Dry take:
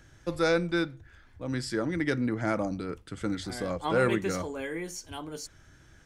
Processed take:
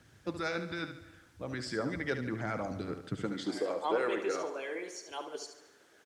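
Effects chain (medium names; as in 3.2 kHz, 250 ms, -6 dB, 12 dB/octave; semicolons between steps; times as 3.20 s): high-pass sweep 100 Hz -> 410 Hz, 3.04–3.63 s; in parallel at +2 dB: peak limiter -22 dBFS, peak gain reduction 11.5 dB; on the sum: harmonic-percussive split harmonic -13 dB; added noise blue -55 dBFS; distance through air 72 m; feedback delay 72 ms, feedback 42%, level -9 dB; on a send at -20 dB: reverberation RT60 1.2 s, pre-delay 186 ms; on the sum: trim -6.5 dB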